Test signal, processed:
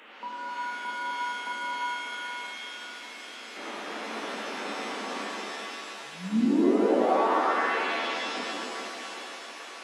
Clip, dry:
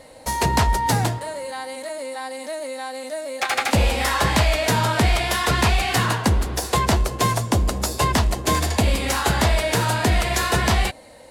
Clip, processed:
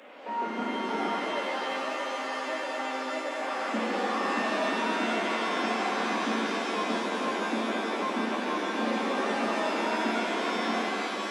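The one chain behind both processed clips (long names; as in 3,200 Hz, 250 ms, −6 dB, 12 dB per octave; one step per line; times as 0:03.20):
linear delta modulator 16 kbit/s, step −36 dBFS
Butterworth high-pass 210 Hz 72 dB per octave
reverb with rising layers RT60 3.1 s, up +7 semitones, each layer −2 dB, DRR −3 dB
level −8 dB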